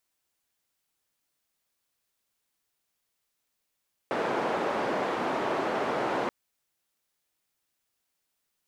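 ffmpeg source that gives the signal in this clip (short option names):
-f lavfi -i "anoisesrc=c=white:d=2.18:r=44100:seed=1,highpass=f=280,lowpass=f=840,volume=-8.8dB"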